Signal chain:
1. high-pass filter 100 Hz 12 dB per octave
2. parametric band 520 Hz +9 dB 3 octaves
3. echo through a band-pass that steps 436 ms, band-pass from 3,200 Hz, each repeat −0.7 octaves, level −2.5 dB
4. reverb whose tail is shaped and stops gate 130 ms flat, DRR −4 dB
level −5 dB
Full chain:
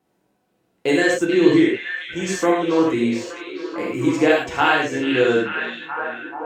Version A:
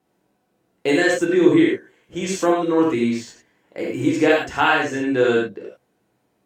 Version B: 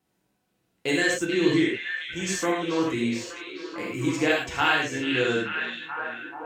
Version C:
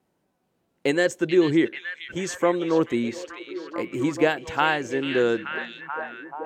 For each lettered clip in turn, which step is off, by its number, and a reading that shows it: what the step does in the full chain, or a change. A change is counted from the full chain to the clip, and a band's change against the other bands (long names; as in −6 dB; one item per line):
3, echo-to-direct ratio 6.0 dB to 4.0 dB
2, 500 Hz band −5.0 dB
4, echo-to-direct ratio 6.0 dB to −4.5 dB